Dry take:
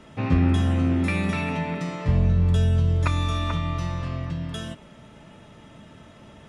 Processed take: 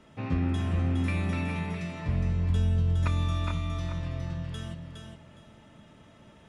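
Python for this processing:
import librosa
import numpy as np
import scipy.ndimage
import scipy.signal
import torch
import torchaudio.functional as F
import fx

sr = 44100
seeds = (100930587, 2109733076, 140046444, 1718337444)

y = fx.echo_feedback(x, sr, ms=413, feedback_pct=23, wet_db=-5.0)
y = F.gain(torch.from_numpy(y), -8.0).numpy()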